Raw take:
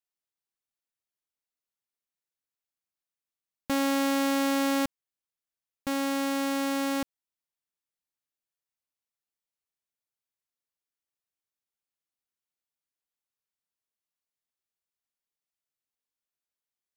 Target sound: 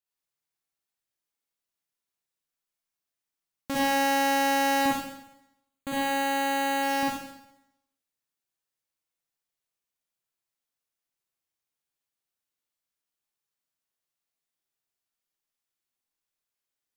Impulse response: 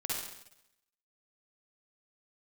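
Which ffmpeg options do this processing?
-filter_complex "[0:a]asettb=1/sr,asplit=3[s0][s1][s2];[s0]atrim=end=4.814[s3];[s1]atrim=start=4.81:end=6.83,asetpts=PTS-STARTPTS,afade=t=in:d=0.004:c=qsin,afade=t=out:st=2.016:d=0.004:c=qsin,asuperstop=centerf=5400:order=8:qfactor=3.9[s4];[s2]atrim=start=6.826[s5];[s3][s4]acrossfade=d=0.004:c1=hsin:c2=qsin[s6];[s6][s5]acrossfade=d=0.004:c1=qsin:c2=hsin[s7];[1:a]atrim=start_sample=2205[s8];[s7][s8]afir=irnorm=-1:irlink=0"

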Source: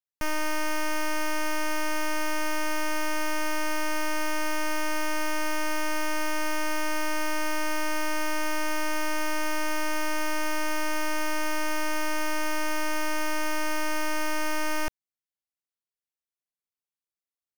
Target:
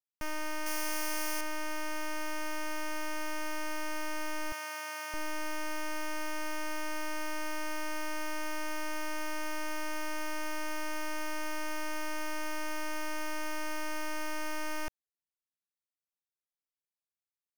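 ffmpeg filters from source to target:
-filter_complex "[0:a]asettb=1/sr,asplit=3[s0][s1][s2];[s0]atrim=end=0.664[s3];[s1]atrim=start=0.66:end=1.41,asetpts=PTS-STARTPTS,afade=t=in:d=0.004:c=qsin,afade=t=out:st=0.746:d=0.004:c=qsin,highshelf=f=4600:g=11.5[s4];[s2]atrim=start=1.406[s5];[s3][s4]acrossfade=d=0.004:c1=hsin:c2=qsin[s6];[s6][s5]acrossfade=d=0.004:c1=qsin:c2=hsin,asettb=1/sr,asplit=3[s7][s8][s9];[s7]atrim=end=4.524[s10];[s8]atrim=start=4.52:end=5.14,asetpts=PTS-STARTPTS,afade=t=in:d=0.004:c=qsin,afade=t=out:st=0.616:d=0.004:c=qsin,highpass=690[s11];[s9]atrim=start=5.136[s12];[s10][s11]acrossfade=d=0.004:c1=hsin:c2=qsin[s13];[s13][s12]acrossfade=d=0.004:c1=qsin:c2=hsin,volume=0.398"

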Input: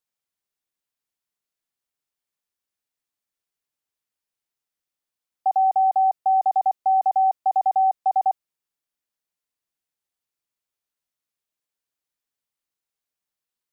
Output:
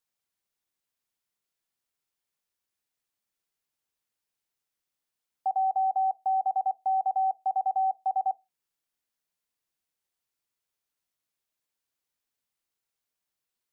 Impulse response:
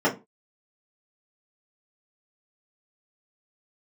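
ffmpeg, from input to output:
-filter_complex "[0:a]alimiter=limit=0.0708:level=0:latency=1:release=290,asplit=2[s0][s1];[1:a]atrim=start_sample=2205[s2];[s1][s2]afir=irnorm=-1:irlink=0,volume=0.02[s3];[s0][s3]amix=inputs=2:normalize=0,volume=1.12"

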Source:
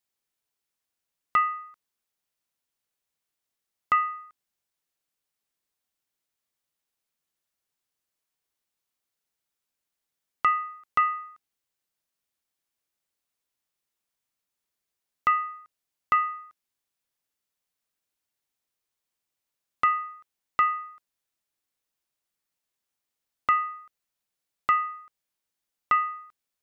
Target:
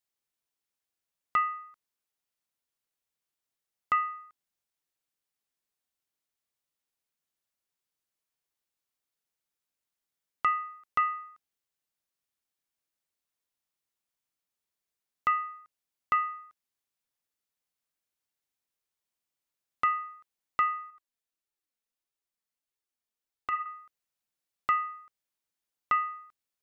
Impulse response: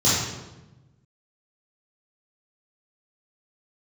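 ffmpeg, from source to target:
-filter_complex "[0:a]asettb=1/sr,asplit=3[s0][s1][s2];[s0]atrim=end=20.904[s3];[s1]atrim=start=20.9:end=23.66,asetpts=PTS-STARTPTS,afade=t=in:d=0.004:c=qsin,afade=t=out:st=2.756:d=0.004:c=qsin,flanger=delay=2.2:depth=2.4:regen=29:speed=1.6:shape=sinusoidal[s4];[s2]atrim=start=23.656[s5];[s3][s4]acrossfade=d=0.004:c1=hsin:c2=qsin[s6];[s6][s5]acrossfade=d=0.004:c1=qsin:c2=hsin,volume=0.631"

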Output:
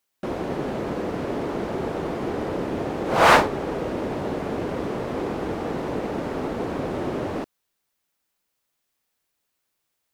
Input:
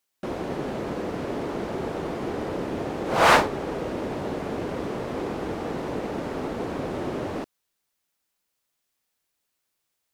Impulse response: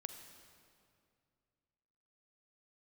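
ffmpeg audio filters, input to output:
-af "equalizer=f=7300:w=0.37:g=-2.5,volume=1.33"

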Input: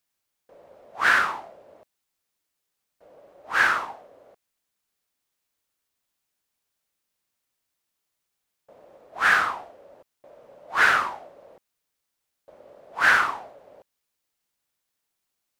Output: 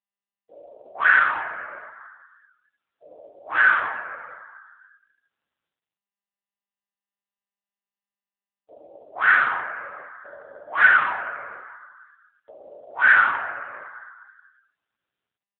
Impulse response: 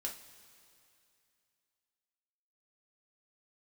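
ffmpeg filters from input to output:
-filter_complex "[0:a]acrossover=split=2800[s0][s1];[s1]acompressor=threshold=0.00708:ratio=4:attack=1:release=60[s2];[s0][s2]amix=inputs=2:normalize=0,asplit=2[s3][s4];[s4]aecho=0:1:90:0.178[s5];[s3][s5]amix=inputs=2:normalize=0[s6];[1:a]atrim=start_sample=2205[s7];[s6][s7]afir=irnorm=-1:irlink=0,acrossover=split=1300[s8][s9];[s8]asoftclip=type=tanh:threshold=0.0355[s10];[s10][s9]amix=inputs=2:normalize=0,afftdn=nr=33:nf=-51,volume=2.51" -ar 8000 -c:a libopencore_amrnb -b:a 6700

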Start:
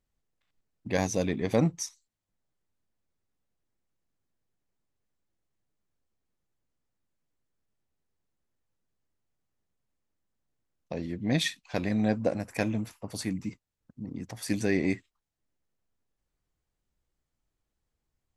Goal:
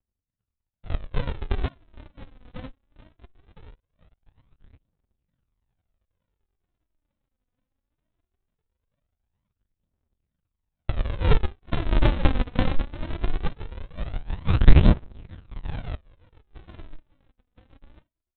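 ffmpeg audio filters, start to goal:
-af "dynaudnorm=f=350:g=13:m=4.47,asetrate=70004,aresample=44100,atempo=0.629961,highpass=f=330:p=1,aecho=1:1:1030|2060|3090:0.158|0.0586|0.0217,aresample=8000,acrusher=samples=37:mix=1:aa=0.000001:lfo=1:lforange=37:lforate=2.2,aresample=44100,aphaser=in_gain=1:out_gain=1:delay=4.1:decay=0.49:speed=0.2:type=triangular"

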